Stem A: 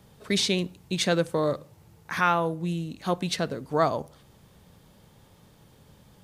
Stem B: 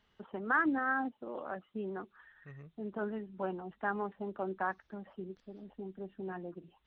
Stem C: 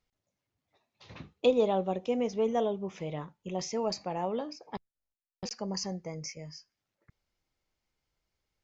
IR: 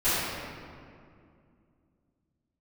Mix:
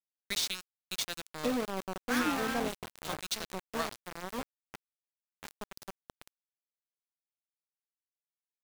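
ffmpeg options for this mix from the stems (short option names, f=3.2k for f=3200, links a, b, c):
-filter_complex "[0:a]tiltshelf=f=1.3k:g=-10,volume=-12dB,asplit=2[a][b];[1:a]acrossover=split=310|3000[c][d][e];[d]acompressor=threshold=-34dB:ratio=10[f];[c][f][e]amix=inputs=3:normalize=0,adelay=1600,volume=0.5dB[g];[2:a]equalizer=f=260:t=o:w=0.27:g=14,bandreject=f=3.3k:w=16,volume=-11.5dB[h];[b]apad=whole_len=373505[i];[g][i]sidechaingate=range=-7dB:threshold=-59dB:ratio=16:detection=peak[j];[a][h]amix=inputs=2:normalize=0,acontrast=28,alimiter=limit=-20.5dB:level=0:latency=1:release=290,volume=0dB[k];[j][k]amix=inputs=2:normalize=0,aeval=exprs='val(0)*gte(abs(val(0)),0.0282)':c=same"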